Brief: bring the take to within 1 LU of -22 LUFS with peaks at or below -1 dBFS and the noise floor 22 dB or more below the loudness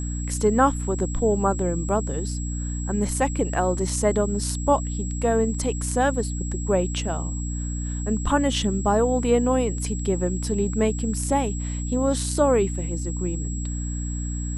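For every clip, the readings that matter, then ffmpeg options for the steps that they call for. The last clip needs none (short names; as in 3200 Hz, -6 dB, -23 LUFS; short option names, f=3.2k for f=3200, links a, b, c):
hum 60 Hz; harmonics up to 300 Hz; hum level -26 dBFS; steady tone 7700 Hz; tone level -36 dBFS; loudness -24.0 LUFS; peak -6.0 dBFS; loudness target -22.0 LUFS
-> -af "bandreject=f=60:t=h:w=4,bandreject=f=120:t=h:w=4,bandreject=f=180:t=h:w=4,bandreject=f=240:t=h:w=4,bandreject=f=300:t=h:w=4"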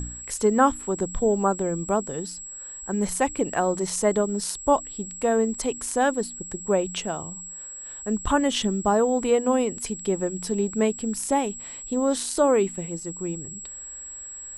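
hum none; steady tone 7700 Hz; tone level -36 dBFS
-> -af "bandreject=f=7.7k:w=30"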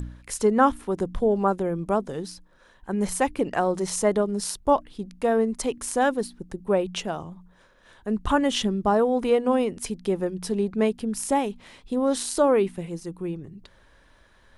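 steady tone none; loudness -25.0 LUFS; peak -7.0 dBFS; loudness target -22.0 LUFS
-> -af "volume=3dB"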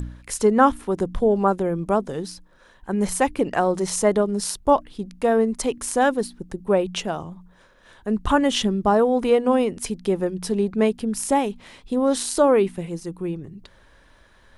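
loudness -22.0 LUFS; peak -4.0 dBFS; noise floor -54 dBFS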